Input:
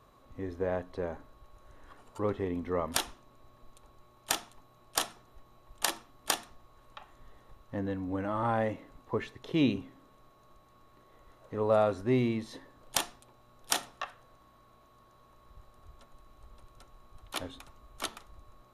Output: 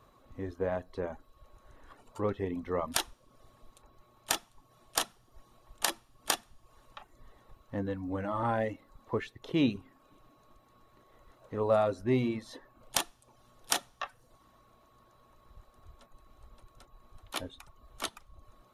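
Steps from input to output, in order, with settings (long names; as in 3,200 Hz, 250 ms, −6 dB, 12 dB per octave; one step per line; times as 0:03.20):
coupled-rooms reverb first 0.38 s, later 2.2 s, from −17 dB, DRR 15 dB
reverb reduction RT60 0.55 s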